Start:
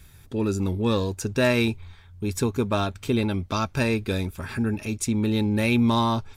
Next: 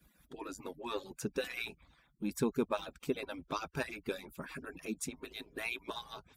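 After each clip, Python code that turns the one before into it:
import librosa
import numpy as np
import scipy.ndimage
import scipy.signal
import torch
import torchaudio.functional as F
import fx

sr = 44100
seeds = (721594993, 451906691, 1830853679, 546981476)

y = fx.hpss_only(x, sr, part='percussive')
y = scipy.signal.sosfilt(scipy.signal.butter(2, 43.0, 'highpass', fs=sr, output='sos'), y)
y = fx.peak_eq(y, sr, hz=5600.0, db=-5.5, octaves=2.1)
y = y * 10.0 ** (-6.5 / 20.0)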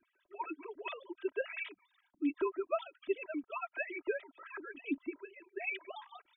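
y = fx.sine_speech(x, sr)
y = y + 0.74 * np.pad(y, (int(3.1 * sr / 1000.0), 0))[:len(y)]
y = fx.comb_cascade(y, sr, direction='rising', hz=1.8)
y = y * 10.0 ** (3.5 / 20.0)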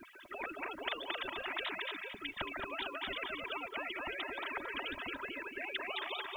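y = fx.echo_feedback(x, sr, ms=224, feedback_pct=22, wet_db=-9)
y = fx.spectral_comp(y, sr, ratio=10.0)
y = y * 10.0 ** (1.0 / 20.0)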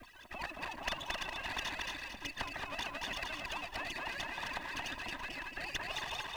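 y = fx.lower_of_two(x, sr, delay_ms=1.1)
y = y + 10.0 ** (-15.0 / 20.0) * np.pad(y, (int(333 * sr / 1000.0), 0))[:len(y)]
y = y * 10.0 ** (1.5 / 20.0)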